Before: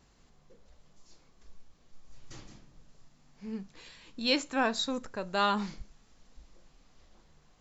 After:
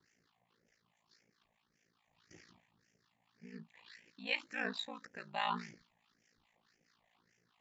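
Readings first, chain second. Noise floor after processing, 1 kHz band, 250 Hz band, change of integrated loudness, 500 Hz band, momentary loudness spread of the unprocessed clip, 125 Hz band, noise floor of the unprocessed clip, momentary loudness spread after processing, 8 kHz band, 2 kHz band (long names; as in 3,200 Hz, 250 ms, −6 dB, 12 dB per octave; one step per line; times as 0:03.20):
−80 dBFS, −9.0 dB, −14.5 dB, −8.5 dB, −14.0 dB, 21 LU, −9.5 dB, −64 dBFS, 18 LU, can't be measured, −5.0 dB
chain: all-pass phaser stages 6, 1.8 Hz, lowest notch 350–1,100 Hz
two-band tremolo in antiphase 4.7 Hz, depth 70%, crossover 940 Hz
loudspeaker in its box 250–6,800 Hz, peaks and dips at 280 Hz −5 dB, 580 Hz −4 dB, 1,800 Hz +6 dB
ring modulation 28 Hz
level +1.5 dB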